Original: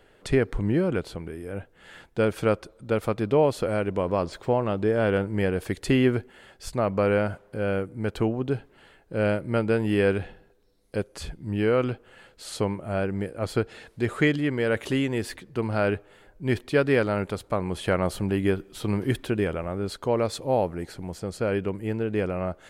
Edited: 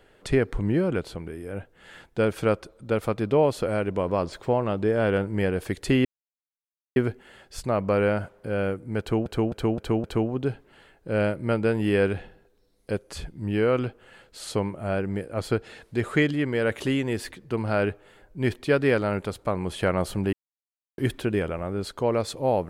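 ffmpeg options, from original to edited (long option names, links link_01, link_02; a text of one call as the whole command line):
ffmpeg -i in.wav -filter_complex "[0:a]asplit=8[link_01][link_02][link_03][link_04][link_05][link_06][link_07][link_08];[link_01]atrim=end=6.05,asetpts=PTS-STARTPTS,afade=type=out:start_time=6.046:duration=0.004:curve=hsin,apad=pad_dur=0.91[link_09];[link_02]atrim=start=6.05:end=8.352,asetpts=PTS-STARTPTS,afade=type=in:duration=0.004:curve=hsin[link_10];[link_03]atrim=start=8.088:end=8.352[link_11];[link_04]atrim=start=8.088:end=8.352[link_12];[link_05]atrim=start=8.088:end=8.352[link_13];[link_06]atrim=start=8.088:end=18.38,asetpts=PTS-STARTPTS,afade=type=out:start_time=10.288:duration=0.004:curve=hsin[link_14];[link_07]atrim=start=18.38:end=19.03,asetpts=PTS-STARTPTS,volume=0[link_15];[link_08]atrim=start=19.03,asetpts=PTS-STARTPTS,afade=type=in:duration=0.004:curve=hsin[link_16];[link_09][link_10]concat=n=2:v=0:a=1[link_17];[link_17][link_11]acrossfade=duration=0.004:curve1=hsin:curve2=hsin[link_18];[link_18][link_12]acrossfade=duration=0.004:curve1=hsin:curve2=hsin[link_19];[link_19][link_13]acrossfade=duration=0.004:curve1=hsin:curve2=hsin[link_20];[link_14][link_15][link_16]concat=n=3:v=0:a=1[link_21];[link_20][link_21]acrossfade=duration=0.004:curve1=hsin:curve2=hsin" out.wav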